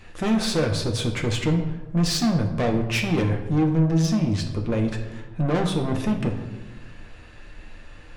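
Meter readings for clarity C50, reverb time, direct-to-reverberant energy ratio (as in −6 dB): 8.0 dB, 1.2 s, 2.0 dB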